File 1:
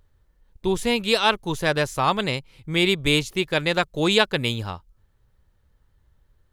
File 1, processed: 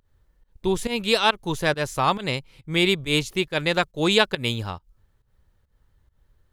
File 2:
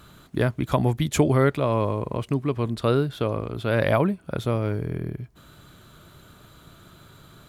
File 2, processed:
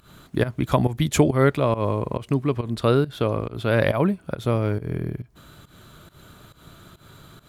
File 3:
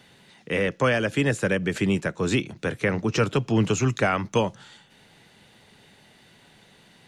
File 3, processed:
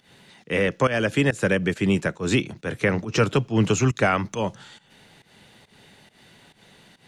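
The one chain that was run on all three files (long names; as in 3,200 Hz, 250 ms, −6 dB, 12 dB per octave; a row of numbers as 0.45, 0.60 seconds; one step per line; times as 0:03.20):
fake sidechain pumping 138 BPM, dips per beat 1, −17 dB, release 166 ms
loudness normalisation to −23 LKFS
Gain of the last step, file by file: 0.0, +2.5, +2.5 decibels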